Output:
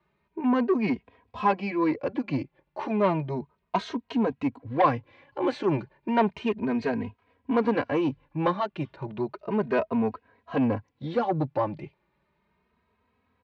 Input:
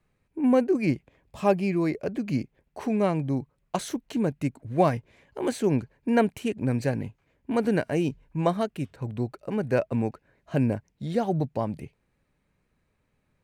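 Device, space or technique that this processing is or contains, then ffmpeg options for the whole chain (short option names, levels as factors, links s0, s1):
barber-pole flanger into a guitar amplifier: -filter_complex "[0:a]asplit=2[s0][s1];[s1]adelay=2.9,afreqshift=0.33[s2];[s0][s2]amix=inputs=2:normalize=1,asoftclip=type=tanh:threshold=0.0794,highpass=84,equalizer=f=120:t=q:w=4:g=-6,equalizer=f=170:t=q:w=4:g=-5,equalizer=f=1000:t=q:w=4:g=9,lowpass=f=4200:w=0.5412,lowpass=f=4200:w=1.3066,volume=1.88"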